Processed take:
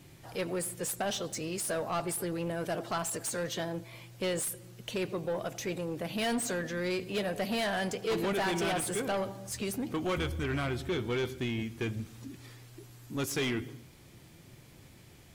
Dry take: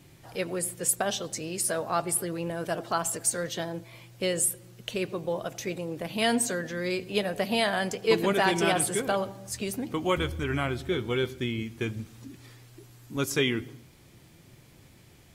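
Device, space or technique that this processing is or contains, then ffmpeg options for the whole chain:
saturation between pre-emphasis and de-emphasis: -af "highshelf=frequency=4600:gain=7,asoftclip=type=tanh:threshold=-26.5dB,highshelf=frequency=4600:gain=-7"

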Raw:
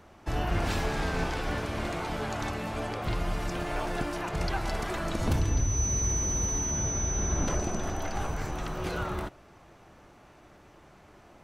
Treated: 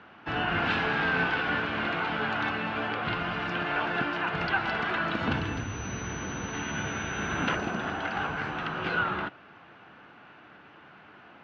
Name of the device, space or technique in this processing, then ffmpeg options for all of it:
kitchen radio: -filter_complex "[0:a]highpass=170,equalizer=frequency=370:width_type=q:width=4:gain=-5,equalizer=frequency=590:width_type=q:width=4:gain=-6,equalizer=frequency=1500:width_type=q:width=4:gain=9,equalizer=frequency=2800:width_type=q:width=4:gain=6,lowpass=frequency=3700:width=0.5412,lowpass=frequency=3700:width=1.3066,asettb=1/sr,asplit=3[link_01][link_02][link_03];[link_01]atrim=end=6.534[link_04];[link_02]atrim=start=6.53:end=7.56,asetpts=PTS-STARTPTS,afade=type=in:duration=0.004:curve=qsin,afade=type=out:start_time=1.026:duration=0.004:curve=qsin,equalizer=frequency=2600:width_type=o:width=1.5:gain=5[link_05];[link_03]atrim=start=7.556[link_06];[link_04][link_05]acrossfade=duration=0.004:curve1=hsin:curve2=qsin[link_07];[link_07][link_06]acrossfade=duration=0.004:curve1=qsin:curve2=hsin,volume=3.5dB"

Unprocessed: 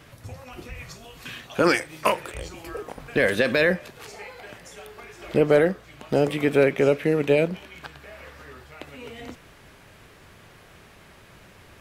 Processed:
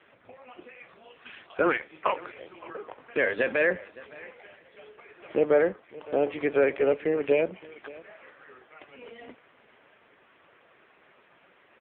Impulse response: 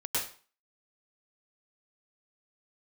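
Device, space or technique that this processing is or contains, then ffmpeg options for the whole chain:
satellite phone: -filter_complex "[0:a]asettb=1/sr,asplit=3[link_01][link_02][link_03];[link_01]atrim=end=4.054[link_04];[link_02]atrim=start=4.05:end=5.08,asetpts=PTS-STARTPTS,afade=type=in:duration=0.004:curve=qsin,afade=type=out:start_time=1.026:duration=0.004:curve=qsin,adynamicequalizer=threshold=0.00141:dfrequency=1000:dqfactor=1.3:tfrequency=1000:tqfactor=1.3:attack=5:release=100:ratio=0.375:range=2.5:mode=cutabove:tftype=bell[link_05];[link_03]atrim=start=5.076[link_06];[link_04][link_05]acrossfade=duration=0.004:curve1=hsin:curve2=qsin[link_07];[link_07][link_06]acrossfade=duration=0.004:curve1=qsin:curve2=hsin,highpass=330,lowpass=3300,aecho=1:1:565:0.0944,volume=-2dB" -ar 8000 -c:a libopencore_amrnb -b:a 5900

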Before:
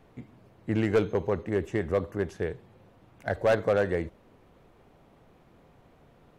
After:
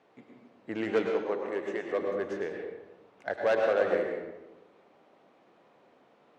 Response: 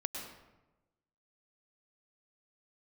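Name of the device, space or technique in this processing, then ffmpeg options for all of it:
supermarket ceiling speaker: -filter_complex "[0:a]highpass=340,lowpass=6000[link_01];[1:a]atrim=start_sample=2205[link_02];[link_01][link_02]afir=irnorm=-1:irlink=0,asettb=1/sr,asplit=3[link_03][link_04][link_05];[link_03]atrim=end=1.104[link_06];[link_04]atrim=start=1.1:end=1.99,asetpts=PTS-STARTPTS,afade=type=in:duration=0.004:curve=qsin,afade=type=out:start_time=0.886:duration=0.004:curve=qsin,highpass=frequency=290:poles=1[link_07];[link_05]atrim=start=1.986[link_08];[link_06][link_07]acrossfade=duration=0.004:curve1=hsin:curve2=qsin[link_09];[link_09][link_08]acrossfade=duration=0.004:curve1=qsin:curve2=hsin,volume=-1.5dB"

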